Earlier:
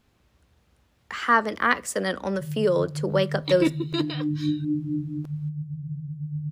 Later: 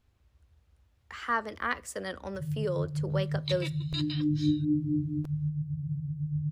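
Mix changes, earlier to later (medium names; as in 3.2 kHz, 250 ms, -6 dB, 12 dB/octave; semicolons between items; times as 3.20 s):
speech -9.5 dB; second sound: add band-pass filter 5.7 kHz, Q 0.91; master: add resonant low shelf 120 Hz +9 dB, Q 1.5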